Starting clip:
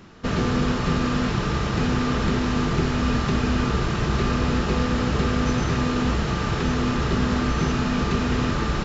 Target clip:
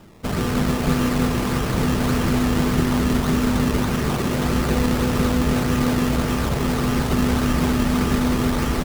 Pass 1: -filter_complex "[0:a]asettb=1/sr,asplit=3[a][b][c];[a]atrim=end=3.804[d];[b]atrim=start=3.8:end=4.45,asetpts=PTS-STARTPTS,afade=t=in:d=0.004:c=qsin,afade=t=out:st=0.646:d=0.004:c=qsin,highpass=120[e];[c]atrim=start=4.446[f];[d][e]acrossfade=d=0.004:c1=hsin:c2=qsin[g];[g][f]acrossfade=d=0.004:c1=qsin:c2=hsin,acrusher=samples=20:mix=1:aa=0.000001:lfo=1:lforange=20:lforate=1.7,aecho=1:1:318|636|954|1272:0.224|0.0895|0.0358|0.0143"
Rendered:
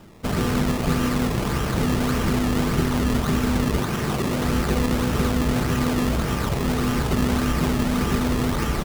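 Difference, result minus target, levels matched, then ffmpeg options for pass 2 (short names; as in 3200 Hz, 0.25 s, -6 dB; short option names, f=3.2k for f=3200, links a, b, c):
echo-to-direct -9.5 dB
-filter_complex "[0:a]asettb=1/sr,asplit=3[a][b][c];[a]atrim=end=3.804[d];[b]atrim=start=3.8:end=4.45,asetpts=PTS-STARTPTS,afade=t=in:d=0.004:c=qsin,afade=t=out:st=0.646:d=0.004:c=qsin,highpass=120[e];[c]atrim=start=4.446[f];[d][e]acrossfade=d=0.004:c1=hsin:c2=qsin[g];[g][f]acrossfade=d=0.004:c1=qsin:c2=hsin,acrusher=samples=20:mix=1:aa=0.000001:lfo=1:lforange=20:lforate=1.7,aecho=1:1:318|636|954|1272|1590:0.668|0.267|0.107|0.0428|0.0171"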